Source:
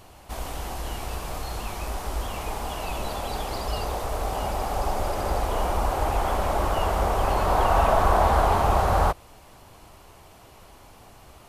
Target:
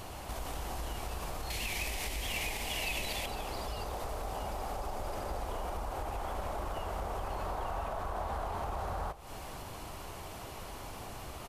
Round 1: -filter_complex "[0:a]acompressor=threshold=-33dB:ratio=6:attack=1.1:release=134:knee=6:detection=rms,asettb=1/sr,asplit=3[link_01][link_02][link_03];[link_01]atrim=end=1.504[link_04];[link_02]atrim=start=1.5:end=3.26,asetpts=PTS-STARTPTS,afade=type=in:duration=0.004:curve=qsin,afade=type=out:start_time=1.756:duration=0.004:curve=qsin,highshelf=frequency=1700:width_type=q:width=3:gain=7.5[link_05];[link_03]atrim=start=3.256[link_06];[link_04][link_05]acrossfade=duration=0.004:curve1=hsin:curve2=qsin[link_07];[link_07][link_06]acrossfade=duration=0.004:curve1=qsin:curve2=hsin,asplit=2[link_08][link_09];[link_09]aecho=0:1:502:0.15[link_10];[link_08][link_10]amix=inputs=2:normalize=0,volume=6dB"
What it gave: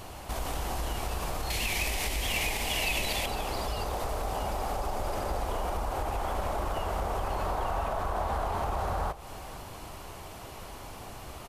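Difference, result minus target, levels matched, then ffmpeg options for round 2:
downward compressor: peak gain reduction −6 dB
-filter_complex "[0:a]acompressor=threshold=-40dB:ratio=6:attack=1.1:release=134:knee=6:detection=rms,asettb=1/sr,asplit=3[link_01][link_02][link_03];[link_01]atrim=end=1.504[link_04];[link_02]atrim=start=1.5:end=3.26,asetpts=PTS-STARTPTS,afade=type=in:duration=0.004:curve=qsin,afade=type=out:start_time=1.756:duration=0.004:curve=qsin,highshelf=frequency=1700:width_type=q:width=3:gain=7.5[link_05];[link_03]atrim=start=3.256[link_06];[link_04][link_05]acrossfade=duration=0.004:curve1=hsin:curve2=qsin[link_07];[link_07][link_06]acrossfade=duration=0.004:curve1=qsin:curve2=hsin,asplit=2[link_08][link_09];[link_09]aecho=0:1:502:0.15[link_10];[link_08][link_10]amix=inputs=2:normalize=0,volume=6dB"

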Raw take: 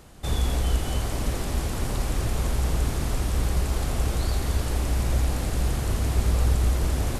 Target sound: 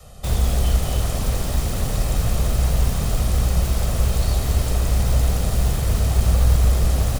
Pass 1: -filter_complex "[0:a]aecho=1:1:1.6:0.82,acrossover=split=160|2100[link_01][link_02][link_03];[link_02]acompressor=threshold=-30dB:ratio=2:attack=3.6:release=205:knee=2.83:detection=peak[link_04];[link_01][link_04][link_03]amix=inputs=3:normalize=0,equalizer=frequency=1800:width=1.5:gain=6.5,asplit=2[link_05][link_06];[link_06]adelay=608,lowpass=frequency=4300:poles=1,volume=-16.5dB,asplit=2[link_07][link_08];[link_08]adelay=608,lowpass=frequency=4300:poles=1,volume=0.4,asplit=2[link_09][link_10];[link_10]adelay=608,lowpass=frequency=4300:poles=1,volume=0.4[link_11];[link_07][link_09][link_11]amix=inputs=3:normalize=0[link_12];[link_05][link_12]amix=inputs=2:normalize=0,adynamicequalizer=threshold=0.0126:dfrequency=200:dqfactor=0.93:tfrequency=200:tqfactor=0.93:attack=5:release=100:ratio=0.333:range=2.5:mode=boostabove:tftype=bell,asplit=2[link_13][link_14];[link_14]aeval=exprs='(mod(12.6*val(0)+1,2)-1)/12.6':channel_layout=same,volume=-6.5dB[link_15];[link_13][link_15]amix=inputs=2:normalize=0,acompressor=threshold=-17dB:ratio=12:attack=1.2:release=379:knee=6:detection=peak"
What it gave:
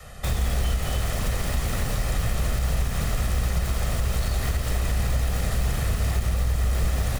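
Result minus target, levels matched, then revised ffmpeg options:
downward compressor: peak gain reduction +9.5 dB; 2,000 Hz band +6.5 dB
-filter_complex "[0:a]aecho=1:1:1.6:0.82,acrossover=split=160|2100[link_01][link_02][link_03];[link_02]acompressor=threshold=-30dB:ratio=2:attack=3.6:release=205:knee=2.83:detection=peak[link_04];[link_01][link_04][link_03]amix=inputs=3:normalize=0,equalizer=frequency=1800:width=1.5:gain=-5.5,asplit=2[link_05][link_06];[link_06]adelay=608,lowpass=frequency=4300:poles=1,volume=-16.5dB,asplit=2[link_07][link_08];[link_08]adelay=608,lowpass=frequency=4300:poles=1,volume=0.4,asplit=2[link_09][link_10];[link_10]adelay=608,lowpass=frequency=4300:poles=1,volume=0.4[link_11];[link_07][link_09][link_11]amix=inputs=3:normalize=0[link_12];[link_05][link_12]amix=inputs=2:normalize=0,adynamicequalizer=threshold=0.0126:dfrequency=200:dqfactor=0.93:tfrequency=200:tqfactor=0.93:attack=5:release=100:ratio=0.333:range=2.5:mode=boostabove:tftype=bell,asplit=2[link_13][link_14];[link_14]aeval=exprs='(mod(12.6*val(0)+1,2)-1)/12.6':channel_layout=same,volume=-6.5dB[link_15];[link_13][link_15]amix=inputs=2:normalize=0"

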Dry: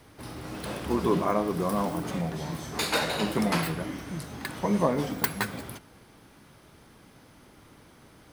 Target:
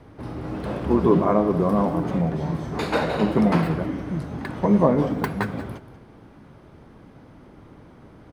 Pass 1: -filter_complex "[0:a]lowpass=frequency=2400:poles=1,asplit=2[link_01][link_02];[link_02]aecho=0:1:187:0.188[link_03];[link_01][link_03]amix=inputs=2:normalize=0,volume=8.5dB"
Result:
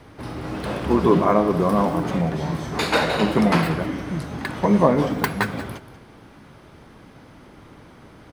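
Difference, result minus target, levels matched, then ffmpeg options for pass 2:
2,000 Hz band +5.0 dB
-filter_complex "[0:a]lowpass=frequency=740:poles=1,asplit=2[link_01][link_02];[link_02]aecho=0:1:187:0.188[link_03];[link_01][link_03]amix=inputs=2:normalize=0,volume=8.5dB"

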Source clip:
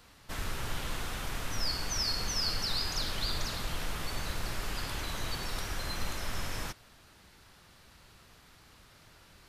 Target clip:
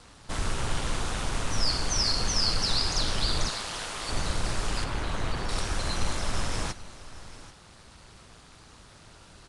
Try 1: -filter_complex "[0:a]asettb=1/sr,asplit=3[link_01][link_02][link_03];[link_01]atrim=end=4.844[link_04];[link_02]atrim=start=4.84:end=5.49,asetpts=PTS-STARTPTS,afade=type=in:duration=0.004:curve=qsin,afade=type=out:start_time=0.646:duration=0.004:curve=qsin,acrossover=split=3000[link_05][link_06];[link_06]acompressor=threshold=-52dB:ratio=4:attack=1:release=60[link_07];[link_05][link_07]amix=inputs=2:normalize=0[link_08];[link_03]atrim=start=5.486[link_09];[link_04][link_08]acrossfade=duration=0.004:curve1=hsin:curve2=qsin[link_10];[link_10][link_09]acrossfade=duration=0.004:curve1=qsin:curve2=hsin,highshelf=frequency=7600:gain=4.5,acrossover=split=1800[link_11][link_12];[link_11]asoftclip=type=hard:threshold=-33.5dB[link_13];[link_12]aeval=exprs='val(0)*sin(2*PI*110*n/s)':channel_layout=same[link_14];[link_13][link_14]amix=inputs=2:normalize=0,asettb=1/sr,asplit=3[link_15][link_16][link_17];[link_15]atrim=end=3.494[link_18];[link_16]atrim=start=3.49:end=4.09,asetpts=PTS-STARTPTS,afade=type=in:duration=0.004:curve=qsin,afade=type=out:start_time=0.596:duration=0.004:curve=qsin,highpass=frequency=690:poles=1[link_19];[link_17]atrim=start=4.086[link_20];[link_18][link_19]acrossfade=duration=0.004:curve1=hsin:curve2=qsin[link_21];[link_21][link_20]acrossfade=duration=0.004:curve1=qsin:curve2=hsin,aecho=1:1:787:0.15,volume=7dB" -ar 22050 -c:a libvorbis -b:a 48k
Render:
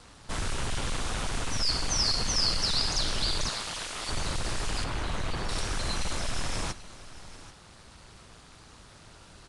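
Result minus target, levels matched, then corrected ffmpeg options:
hard clipping: distortion +37 dB
-filter_complex "[0:a]asettb=1/sr,asplit=3[link_01][link_02][link_03];[link_01]atrim=end=4.844[link_04];[link_02]atrim=start=4.84:end=5.49,asetpts=PTS-STARTPTS,afade=type=in:duration=0.004:curve=qsin,afade=type=out:start_time=0.646:duration=0.004:curve=qsin,acrossover=split=3000[link_05][link_06];[link_06]acompressor=threshold=-52dB:ratio=4:attack=1:release=60[link_07];[link_05][link_07]amix=inputs=2:normalize=0[link_08];[link_03]atrim=start=5.486[link_09];[link_04][link_08]acrossfade=duration=0.004:curve1=hsin:curve2=qsin[link_10];[link_10][link_09]acrossfade=duration=0.004:curve1=qsin:curve2=hsin,highshelf=frequency=7600:gain=4.5,acrossover=split=1800[link_11][link_12];[link_11]asoftclip=type=hard:threshold=-23.5dB[link_13];[link_12]aeval=exprs='val(0)*sin(2*PI*110*n/s)':channel_layout=same[link_14];[link_13][link_14]amix=inputs=2:normalize=0,asettb=1/sr,asplit=3[link_15][link_16][link_17];[link_15]atrim=end=3.494[link_18];[link_16]atrim=start=3.49:end=4.09,asetpts=PTS-STARTPTS,afade=type=in:duration=0.004:curve=qsin,afade=type=out:start_time=0.596:duration=0.004:curve=qsin,highpass=frequency=690:poles=1[link_19];[link_17]atrim=start=4.086[link_20];[link_18][link_19]acrossfade=duration=0.004:curve1=hsin:curve2=qsin[link_21];[link_21][link_20]acrossfade=duration=0.004:curve1=qsin:curve2=hsin,aecho=1:1:787:0.15,volume=7dB" -ar 22050 -c:a libvorbis -b:a 48k

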